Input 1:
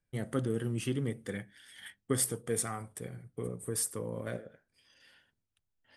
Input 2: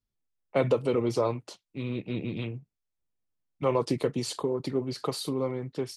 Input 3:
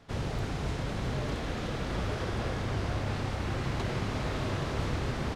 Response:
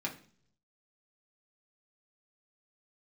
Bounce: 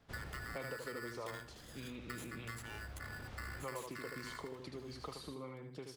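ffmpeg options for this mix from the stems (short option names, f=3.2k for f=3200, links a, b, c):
-filter_complex "[0:a]acompressor=threshold=-35dB:ratio=6,equalizer=f=460:t=o:w=2.8:g=-5,aeval=exprs='val(0)*sgn(sin(2*PI*1600*n/s))':c=same,volume=-1.5dB,asplit=2[a][b];[b]volume=-21dB[c];[1:a]volume=-9.5dB,asplit=3[d][e][f];[e]volume=-6dB[g];[2:a]equalizer=f=66:t=o:w=0.27:g=9.5,volume=-11.5dB[h];[f]apad=whole_len=235978[i];[h][i]sidechaincompress=threshold=-50dB:ratio=3:attack=16:release=1480[j];[c][g]amix=inputs=2:normalize=0,aecho=0:1:77|154|231|308:1|0.24|0.0576|0.0138[k];[a][d][j][k]amix=inputs=4:normalize=0,acrossover=split=1100|2700[l][m][n];[l]acompressor=threshold=-46dB:ratio=4[o];[m]acompressor=threshold=-46dB:ratio=4[p];[n]acompressor=threshold=-55dB:ratio=4[q];[o][p][q]amix=inputs=3:normalize=0"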